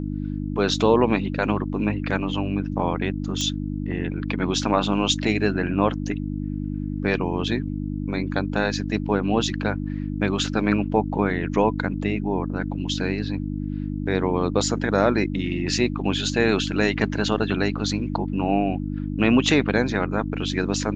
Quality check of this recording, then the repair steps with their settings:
mains hum 50 Hz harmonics 6 −28 dBFS
0:03.41: click −13 dBFS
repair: click removal
hum removal 50 Hz, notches 6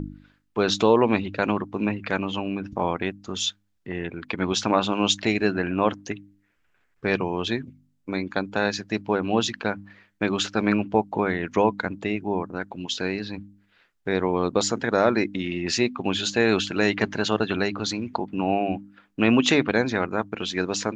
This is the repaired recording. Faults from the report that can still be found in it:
none of them is left

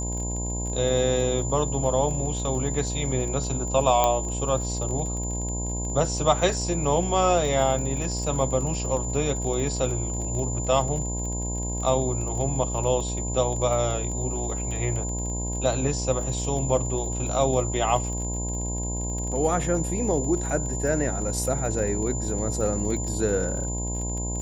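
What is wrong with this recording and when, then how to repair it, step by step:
mains buzz 60 Hz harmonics 17 −30 dBFS
surface crackle 30 per second −32 dBFS
whistle 7,100 Hz −32 dBFS
0:04.04: click −7 dBFS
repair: click removal
notch filter 7,100 Hz, Q 30
hum removal 60 Hz, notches 17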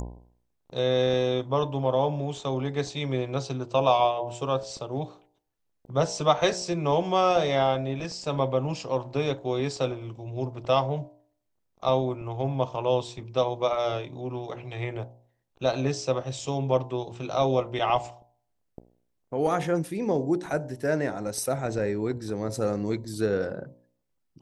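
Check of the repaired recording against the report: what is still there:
none of them is left

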